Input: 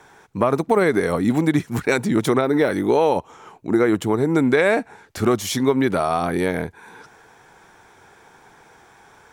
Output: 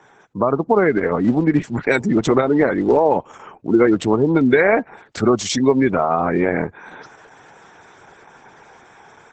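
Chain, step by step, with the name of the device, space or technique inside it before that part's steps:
0:03.84–0:04.59: dynamic equaliser 4,500 Hz, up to +5 dB, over −45 dBFS, Q 1.2
noise-suppressed video call (high-pass filter 110 Hz 12 dB per octave; gate on every frequency bin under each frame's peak −25 dB strong; automatic gain control gain up to 5 dB; Opus 12 kbit/s 48,000 Hz)

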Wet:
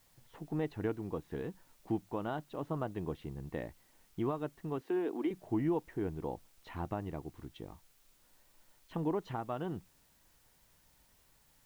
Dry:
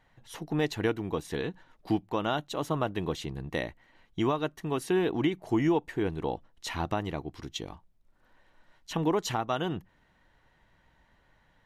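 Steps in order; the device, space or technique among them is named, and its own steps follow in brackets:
0:04.81–0:05.31: Butterworth high-pass 230 Hz 36 dB per octave
cassette deck with a dirty head (head-to-tape spacing loss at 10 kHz 43 dB; tape wow and flutter; white noise bed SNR 30 dB)
level −5 dB

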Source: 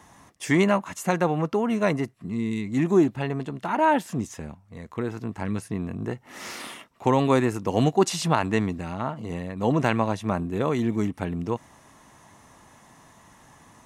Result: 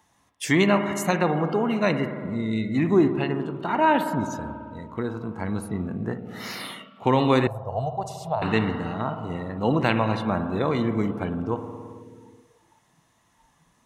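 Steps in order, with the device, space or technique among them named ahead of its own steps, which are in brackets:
spring reverb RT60 2.6 s, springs 54 ms, chirp 75 ms, DRR 6.5 dB
noise reduction from a noise print of the clip's start 14 dB
0:07.47–0:08.42: drawn EQ curve 100 Hz 0 dB, 320 Hz −28 dB, 640 Hz +3 dB, 1,900 Hz −26 dB, 13,000 Hz −13 dB
presence and air boost (parametric band 3,700 Hz +5.5 dB 1.3 octaves; high-shelf EQ 11,000 Hz +7 dB)

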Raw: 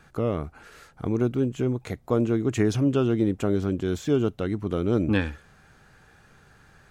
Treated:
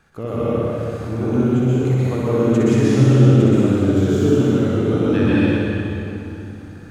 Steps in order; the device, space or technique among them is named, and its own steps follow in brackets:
tunnel (flutter between parallel walls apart 10.6 metres, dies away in 0.87 s; convolution reverb RT60 3.0 s, pre-delay 116 ms, DRR −8.5 dB)
level −3.5 dB

